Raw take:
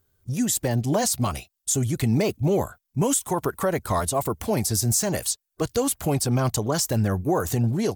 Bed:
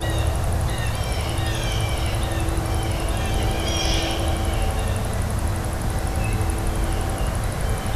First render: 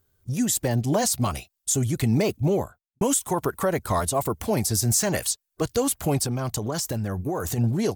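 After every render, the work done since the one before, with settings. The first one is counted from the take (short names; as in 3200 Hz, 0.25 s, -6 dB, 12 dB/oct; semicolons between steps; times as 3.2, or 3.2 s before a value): 2.41–3.01 studio fade out; 4.83–5.27 bell 1900 Hz +4.5 dB 1.9 oct; 6.26–7.58 compressor, threshold -23 dBFS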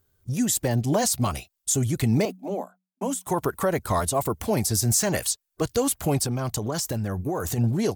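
2.25–3.27 rippled Chebyshev high-pass 180 Hz, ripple 9 dB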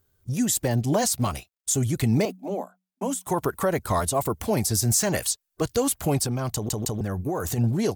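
1.04–1.78 G.711 law mismatch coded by A; 6.53 stutter in place 0.16 s, 3 plays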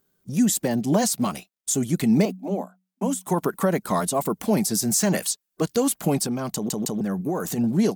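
resonant low shelf 130 Hz -12 dB, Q 3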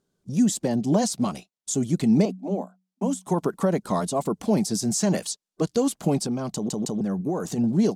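LPF 6900 Hz 12 dB/oct; bell 1900 Hz -7 dB 1.6 oct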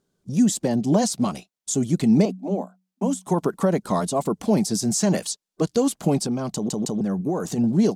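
gain +2 dB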